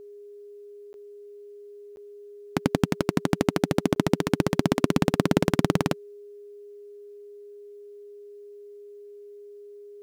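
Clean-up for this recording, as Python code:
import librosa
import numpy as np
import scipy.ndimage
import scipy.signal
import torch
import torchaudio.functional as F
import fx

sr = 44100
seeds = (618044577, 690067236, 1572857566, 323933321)

y = fx.notch(x, sr, hz=410.0, q=30.0)
y = fx.fix_interpolate(y, sr, at_s=(0.93, 1.96, 3.95), length_ms=11.0)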